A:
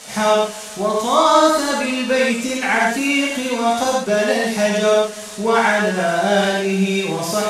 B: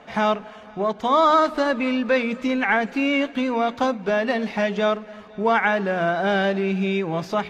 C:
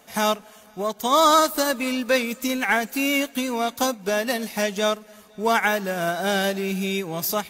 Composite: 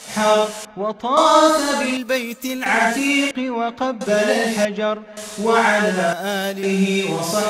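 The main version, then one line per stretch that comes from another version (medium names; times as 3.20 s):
A
0.65–1.17 s: from B
1.97–2.66 s: from C
3.31–4.01 s: from B
4.65–5.17 s: from B
6.13–6.63 s: from C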